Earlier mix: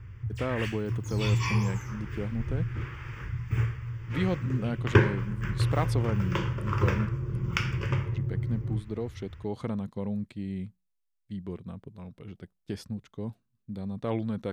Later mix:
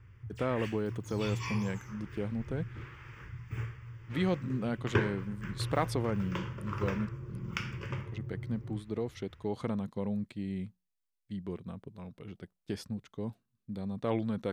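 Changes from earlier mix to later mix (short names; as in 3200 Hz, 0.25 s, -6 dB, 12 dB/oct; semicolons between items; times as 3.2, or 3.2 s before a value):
background -7.0 dB; master: add low shelf 120 Hz -6.5 dB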